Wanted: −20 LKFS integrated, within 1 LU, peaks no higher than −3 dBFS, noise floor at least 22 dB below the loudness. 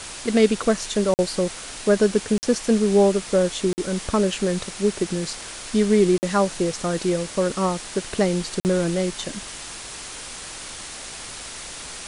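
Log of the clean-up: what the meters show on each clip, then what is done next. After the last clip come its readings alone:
number of dropouts 5; longest dropout 49 ms; background noise floor −37 dBFS; target noise floor −44 dBFS; integrated loudness −22.0 LKFS; sample peak −4.5 dBFS; target loudness −20.0 LKFS
→ repair the gap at 0:01.14/0:02.38/0:03.73/0:06.18/0:08.60, 49 ms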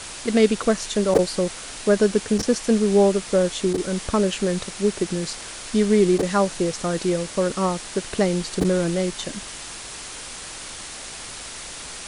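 number of dropouts 0; background noise floor −36 dBFS; target noise floor −44 dBFS
→ broadband denoise 8 dB, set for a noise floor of −36 dBFS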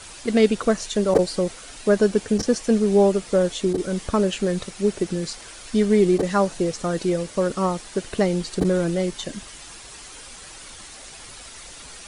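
background noise floor −42 dBFS; target noise floor −44 dBFS
→ broadband denoise 6 dB, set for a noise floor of −42 dBFS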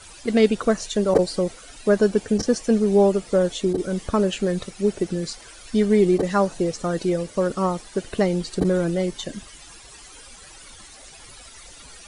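background noise floor −45 dBFS; integrated loudness −22.0 LKFS; sample peak −2.5 dBFS; target loudness −20.0 LKFS
→ level +2 dB
brickwall limiter −3 dBFS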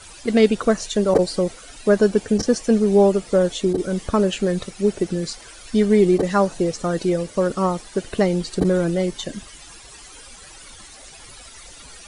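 integrated loudness −20.0 LKFS; sample peak −3.0 dBFS; background noise floor −43 dBFS

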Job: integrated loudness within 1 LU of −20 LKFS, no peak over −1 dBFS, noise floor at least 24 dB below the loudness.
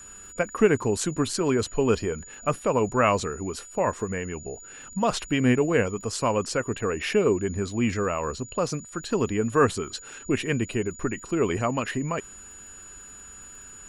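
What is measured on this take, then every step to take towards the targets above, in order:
crackle rate 31 per second; interfering tone 6,900 Hz; level of the tone −43 dBFS; integrated loudness −26.0 LKFS; sample peak −6.0 dBFS; target loudness −20.0 LKFS
→ click removal
notch filter 6,900 Hz, Q 30
level +6 dB
brickwall limiter −1 dBFS

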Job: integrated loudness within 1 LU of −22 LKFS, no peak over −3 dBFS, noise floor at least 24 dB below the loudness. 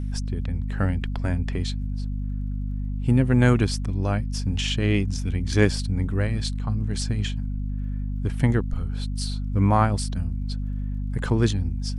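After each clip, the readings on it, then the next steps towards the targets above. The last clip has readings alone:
crackle rate 43 per second; mains hum 50 Hz; hum harmonics up to 250 Hz; level of the hum −25 dBFS; integrated loudness −25.5 LKFS; sample peak −3.0 dBFS; target loudness −22.0 LKFS
→ click removal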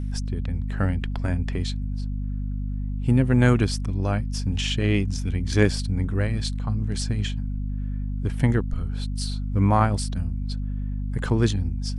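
crackle rate 0 per second; mains hum 50 Hz; hum harmonics up to 250 Hz; level of the hum −25 dBFS
→ hum removal 50 Hz, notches 5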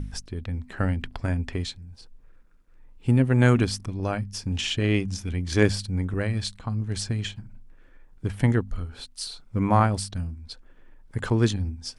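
mains hum none found; integrated loudness −26.0 LKFS; sample peak −4.5 dBFS; target loudness −22.0 LKFS
→ level +4 dB
brickwall limiter −3 dBFS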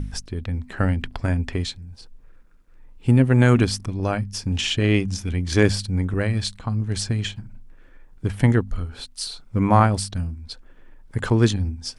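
integrated loudness −22.5 LKFS; sample peak −3.0 dBFS; background noise floor −49 dBFS

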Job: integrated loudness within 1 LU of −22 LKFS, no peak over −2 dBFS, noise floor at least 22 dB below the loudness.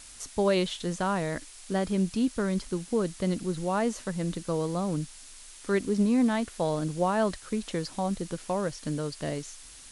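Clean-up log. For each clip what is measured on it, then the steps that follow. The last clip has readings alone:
background noise floor −48 dBFS; target noise floor −52 dBFS; integrated loudness −29.5 LKFS; sample peak −13.5 dBFS; target loudness −22.0 LKFS
→ broadband denoise 6 dB, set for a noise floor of −48 dBFS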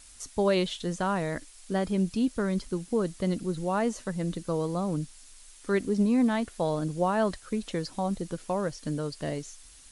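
background noise floor −52 dBFS; integrated loudness −29.5 LKFS; sample peak −13.5 dBFS; target loudness −22.0 LKFS
→ level +7.5 dB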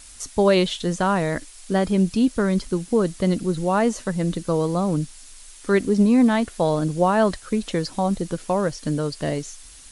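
integrated loudness −22.0 LKFS; sample peak −6.0 dBFS; background noise floor −44 dBFS

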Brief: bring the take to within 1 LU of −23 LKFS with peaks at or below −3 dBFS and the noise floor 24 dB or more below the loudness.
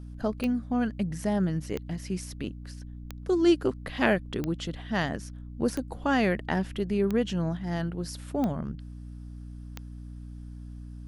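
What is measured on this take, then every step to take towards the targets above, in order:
number of clicks 8; mains hum 60 Hz; hum harmonics up to 300 Hz; level of the hum −39 dBFS; integrated loudness −29.0 LKFS; sample peak −9.5 dBFS; target loudness −23.0 LKFS
→ click removal
hum removal 60 Hz, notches 5
level +6 dB

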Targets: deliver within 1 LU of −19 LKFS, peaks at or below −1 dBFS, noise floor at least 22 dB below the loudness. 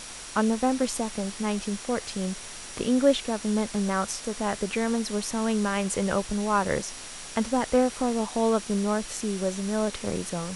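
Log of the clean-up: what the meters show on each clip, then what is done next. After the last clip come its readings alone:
interfering tone 5,700 Hz; level of the tone −49 dBFS; background noise floor −41 dBFS; target noise floor −49 dBFS; integrated loudness −27.0 LKFS; sample peak −10.0 dBFS; target loudness −19.0 LKFS
→ notch filter 5,700 Hz, Q 30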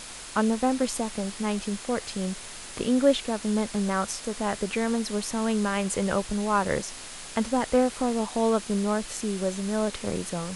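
interfering tone none found; background noise floor −41 dBFS; target noise floor −50 dBFS
→ noise reduction from a noise print 9 dB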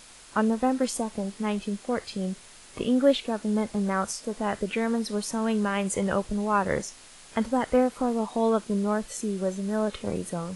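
background noise floor −50 dBFS; integrated loudness −27.5 LKFS; sample peak −10.5 dBFS; target loudness −19.0 LKFS
→ level +8.5 dB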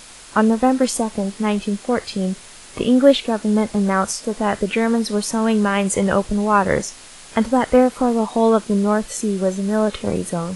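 integrated loudness −19.0 LKFS; sample peak −2.0 dBFS; background noise floor −41 dBFS

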